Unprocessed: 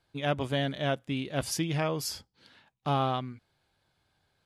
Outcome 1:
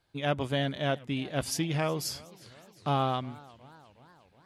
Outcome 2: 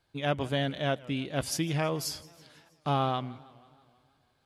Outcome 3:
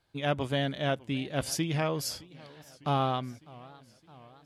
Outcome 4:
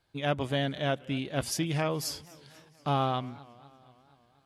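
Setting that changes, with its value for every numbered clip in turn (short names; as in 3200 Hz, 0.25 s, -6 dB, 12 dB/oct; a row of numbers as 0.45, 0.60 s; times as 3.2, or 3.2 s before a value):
warbling echo, time: 0.362, 0.161, 0.608, 0.24 s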